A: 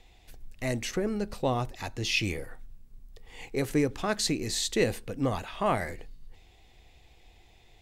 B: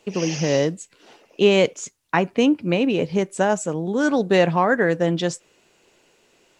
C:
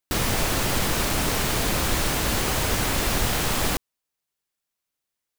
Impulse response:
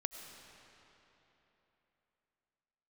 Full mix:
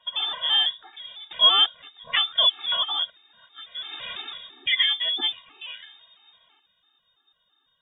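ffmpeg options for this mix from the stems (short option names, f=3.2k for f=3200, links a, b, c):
-filter_complex "[0:a]flanger=delay=7.1:depth=2.9:regen=-76:speed=0.3:shape=triangular,volume=-6dB,asplit=2[a][b];[b]volume=-13.5dB[c];[1:a]lowpass=f=4.2k:w=0.5412,lowpass=f=4.2k:w=1.3066,volume=-0.5dB,asplit=3[d][e][f];[d]atrim=end=3.1,asetpts=PTS-STARTPTS,afade=t=out:st=3.096:d=0.004:c=hsin[g];[e]atrim=start=3.1:end=4.67,asetpts=PTS-STARTPTS,volume=0[h];[f]atrim=start=4.67,asetpts=PTS-STARTPTS,afade=t=in:d=0.004:c=hsin[i];[g][h][i]concat=n=3:v=0:a=1,asplit=2[j][k];[2:a]aeval=exprs='0.316*(cos(1*acos(clip(val(0)/0.316,-1,1)))-cos(1*PI/2))+0.0355*(cos(5*acos(clip(val(0)/0.316,-1,1)))-cos(5*PI/2))+0.0355*(cos(7*acos(clip(val(0)/0.316,-1,1)))-cos(7*PI/2))':c=same,aeval=exprs='val(0)*pow(10,-30*(0.5-0.5*cos(2*PI*0.69*n/s))/20)':c=same,adelay=1200,volume=-8.5dB[l];[k]apad=whole_len=290376[m];[l][m]sidechaincompress=threshold=-28dB:ratio=8:attack=9.6:release=193[n];[3:a]atrim=start_sample=2205[o];[c][o]afir=irnorm=-1:irlink=0[p];[a][j][n][p]amix=inputs=4:normalize=0,highshelf=f=2.6k:g=6.5,lowpass=f=3.1k:t=q:w=0.5098,lowpass=f=3.1k:t=q:w=0.6013,lowpass=f=3.1k:t=q:w=0.9,lowpass=f=3.1k:t=q:w=2.563,afreqshift=-3700,afftfilt=real='re*gt(sin(2*PI*3*pts/sr)*(1-2*mod(floor(b*sr/1024/230),2)),0)':imag='im*gt(sin(2*PI*3*pts/sr)*(1-2*mod(floor(b*sr/1024/230),2)),0)':win_size=1024:overlap=0.75"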